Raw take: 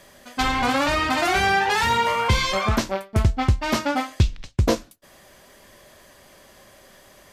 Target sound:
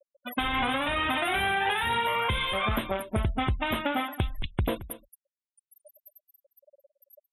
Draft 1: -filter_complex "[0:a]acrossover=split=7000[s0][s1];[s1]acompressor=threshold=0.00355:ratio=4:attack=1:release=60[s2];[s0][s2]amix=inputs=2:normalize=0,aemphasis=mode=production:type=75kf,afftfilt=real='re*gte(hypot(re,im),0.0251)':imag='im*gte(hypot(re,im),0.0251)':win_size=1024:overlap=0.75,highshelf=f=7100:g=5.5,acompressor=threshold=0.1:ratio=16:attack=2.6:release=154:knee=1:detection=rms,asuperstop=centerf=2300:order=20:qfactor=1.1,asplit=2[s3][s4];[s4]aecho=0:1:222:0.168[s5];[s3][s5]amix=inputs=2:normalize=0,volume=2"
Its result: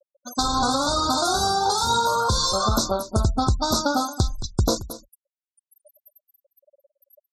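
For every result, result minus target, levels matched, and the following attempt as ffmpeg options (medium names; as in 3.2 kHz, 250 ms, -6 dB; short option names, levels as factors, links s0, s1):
8 kHz band +14.0 dB; compression: peak gain reduction -6.5 dB
-filter_complex "[0:a]acrossover=split=7000[s0][s1];[s1]acompressor=threshold=0.00355:ratio=4:attack=1:release=60[s2];[s0][s2]amix=inputs=2:normalize=0,aemphasis=mode=production:type=75kf,afftfilt=real='re*gte(hypot(re,im),0.0251)':imag='im*gte(hypot(re,im),0.0251)':win_size=1024:overlap=0.75,highshelf=f=7100:g=5.5,acompressor=threshold=0.1:ratio=16:attack=2.6:release=154:knee=1:detection=rms,asuperstop=centerf=5900:order=20:qfactor=1.1,asplit=2[s3][s4];[s4]aecho=0:1:222:0.168[s5];[s3][s5]amix=inputs=2:normalize=0,volume=2"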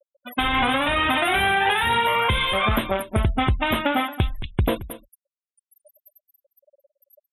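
compression: peak gain reduction -6.5 dB
-filter_complex "[0:a]acrossover=split=7000[s0][s1];[s1]acompressor=threshold=0.00355:ratio=4:attack=1:release=60[s2];[s0][s2]amix=inputs=2:normalize=0,aemphasis=mode=production:type=75kf,afftfilt=real='re*gte(hypot(re,im),0.0251)':imag='im*gte(hypot(re,im),0.0251)':win_size=1024:overlap=0.75,highshelf=f=7100:g=5.5,acompressor=threshold=0.0447:ratio=16:attack=2.6:release=154:knee=1:detection=rms,asuperstop=centerf=5900:order=20:qfactor=1.1,asplit=2[s3][s4];[s4]aecho=0:1:222:0.168[s5];[s3][s5]amix=inputs=2:normalize=0,volume=2"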